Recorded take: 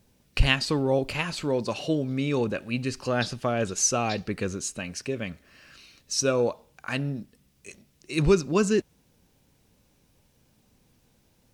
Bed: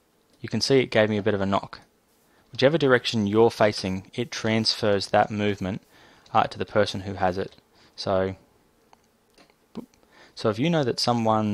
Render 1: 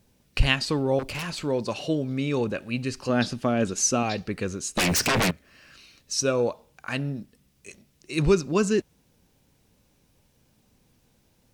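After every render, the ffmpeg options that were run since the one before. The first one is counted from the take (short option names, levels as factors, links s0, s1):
-filter_complex "[0:a]asettb=1/sr,asplit=3[s0][s1][s2];[s0]atrim=end=0.994[s3];[s1]atrim=start=0.99:end=1.43,asetpts=PTS-STARTPTS,afade=t=in:d=0.004:c=qsin,afade=t=out:st=0.436:d=0.004:c=qsin,aeval=exprs='0.0531*(abs(mod(val(0)/0.0531+3,4)-2)-1)':c=same[s4];[s2]atrim=start=1.426[s5];[s3][s4]acrossfade=d=0.004:c1=hsin:c2=qsin[s6];[s6][s5]acrossfade=d=0.004:c1=qsin:c2=hsin,asettb=1/sr,asplit=3[s7][s8][s9];[s7]atrim=end=3.094[s10];[s8]atrim=start=3.09:end=4.03,asetpts=PTS-STARTPTS,afade=t=in:d=0.004:c=qsin,afade=t=out:st=0.936:d=0.004:c=qsin,equalizer=f=250:t=o:w=0.77:g=7.5[s11];[s9]atrim=start=4.026[s12];[s10][s11]acrossfade=d=0.004:c1=hsin:c2=qsin[s13];[s13][s12]acrossfade=d=0.004:c1=qsin:c2=hsin,asettb=1/sr,asplit=3[s14][s15][s16];[s14]atrim=end=4.774[s17];[s15]atrim=start=4.77:end=5.31,asetpts=PTS-STARTPTS,afade=t=in:d=0.004:c=qsin,afade=t=out:st=0.536:d=0.004:c=qsin,aeval=exprs='0.119*sin(PI/2*7.08*val(0)/0.119)':c=same[s18];[s16]atrim=start=5.306[s19];[s17][s18]acrossfade=d=0.004:c1=hsin:c2=qsin[s20];[s20][s19]acrossfade=d=0.004:c1=qsin:c2=hsin"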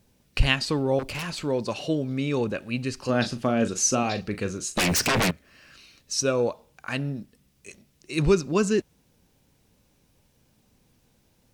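-filter_complex "[0:a]asettb=1/sr,asplit=3[s0][s1][s2];[s0]atrim=end=3.004[s3];[s1]atrim=start=3:end=4.76,asetpts=PTS-STARTPTS,afade=t=in:d=0.004:c=qsin,afade=t=out:st=1.756:d=0.004:c=qsin,asplit=2[s4][s5];[s5]adelay=39,volume=0.316[s6];[s4][s6]amix=inputs=2:normalize=0,atrim=end_sample=77616[s7];[s2]atrim=start=4.756[s8];[s3][s7]acrossfade=d=0.004:c1=hsin:c2=qsin[s9];[s9][s8]acrossfade=d=0.004:c1=qsin:c2=hsin"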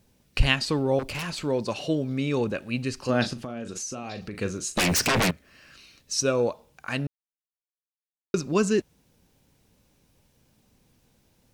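-filter_complex "[0:a]asettb=1/sr,asplit=3[s0][s1][s2];[s0]atrim=end=3.334[s3];[s1]atrim=start=3.33:end=4.41,asetpts=PTS-STARTPTS,afade=t=in:d=0.004:c=qsin,afade=t=out:st=1.076:d=0.004:c=qsin,acompressor=threshold=0.0282:ratio=8:attack=3.2:release=140:knee=1:detection=peak[s4];[s2]atrim=start=4.406[s5];[s3][s4]acrossfade=d=0.004:c1=hsin:c2=qsin[s6];[s6][s5]acrossfade=d=0.004:c1=qsin:c2=hsin,asplit=3[s7][s8][s9];[s7]atrim=end=7.07,asetpts=PTS-STARTPTS,afade=t=out:st=7.066:d=0.004:c=hsin[s10];[s8]atrim=start=7.07:end=8.34,asetpts=PTS-STARTPTS,volume=0[s11];[s9]atrim=start=8.34,asetpts=PTS-STARTPTS,afade=t=in:d=0.004:c=hsin[s12];[s10][s11][s12]concat=n=3:v=0:a=1"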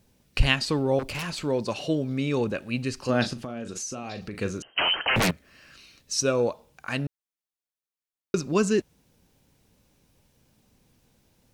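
-filter_complex "[0:a]asettb=1/sr,asplit=3[s0][s1][s2];[s0]atrim=end=4.624[s3];[s1]atrim=start=4.62:end=5.16,asetpts=PTS-STARTPTS,afade=t=in:d=0.004:c=qsin,afade=t=out:st=0.536:d=0.004:c=qsin,lowpass=f=2700:t=q:w=0.5098,lowpass=f=2700:t=q:w=0.6013,lowpass=f=2700:t=q:w=0.9,lowpass=f=2700:t=q:w=2.563,afreqshift=-3200[s4];[s2]atrim=start=5.156[s5];[s3][s4]acrossfade=d=0.004:c1=hsin:c2=qsin[s6];[s6][s5]acrossfade=d=0.004:c1=qsin:c2=hsin"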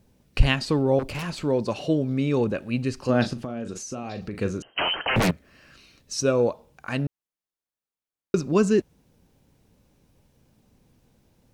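-af "tiltshelf=f=1300:g=3.5"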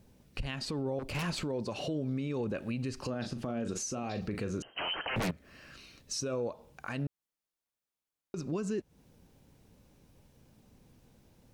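-af "acompressor=threshold=0.0398:ratio=6,alimiter=level_in=1.33:limit=0.0631:level=0:latency=1:release=48,volume=0.75"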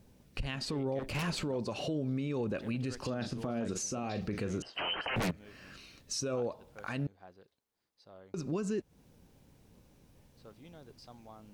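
-filter_complex "[1:a]volume=0.0282[s0];[0:a][s0]amix=inputs=2:normalize=0"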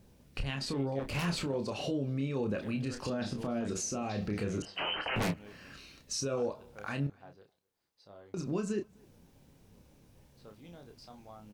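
-filter_complex "[0:a]asplit=2[s0][s1];[s1]adelay=29,volume=0.501[s2];[s0][s2]amix=inputs=2:normalize=0,asplit=2[s3][s4];[s4]adelay=256.6,volume=0.0398,highshelf=f=4000:g=-5.77[s5];[s3][s5]amix=inputs=2:normalize=0"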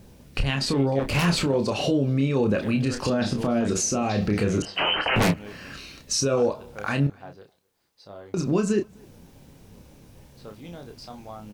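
-af "volume=3.55"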